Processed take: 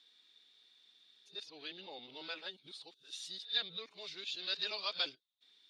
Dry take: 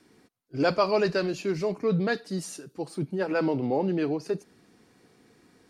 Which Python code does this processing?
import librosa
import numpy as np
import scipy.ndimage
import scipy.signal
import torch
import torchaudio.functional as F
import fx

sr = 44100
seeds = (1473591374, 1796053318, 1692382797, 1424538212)

y = x[::-1].copy()
y = fx.bandpass_q(y, sr, hz=3600.0, q=17.0)
y = y * librosa.db_to_amplitude(16.5)